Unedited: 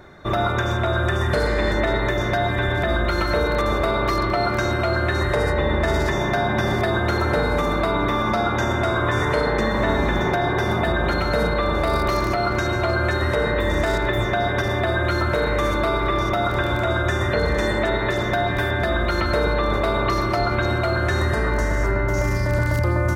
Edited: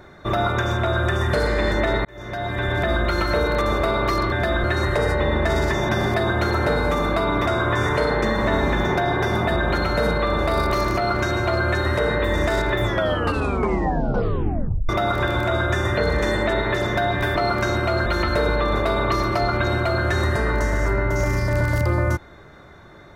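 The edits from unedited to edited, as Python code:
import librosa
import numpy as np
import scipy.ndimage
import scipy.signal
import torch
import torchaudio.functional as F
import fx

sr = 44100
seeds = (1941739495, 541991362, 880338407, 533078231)

y = fx.edit(x, sr, fx.fade_in_span(start_s=2.05, length_s=0.73),
    fx.swap(start_s=4.32, length_s=0.7, other_s=18.72, other_length_s=0.32),
    fx.cut(start_s=6.27, length_s=0.29),
    fx.cut(start_s=8.13, length_s=0.69),
    fx.tape_stop(start_s=14.19, length_s=2.06), tone=tone)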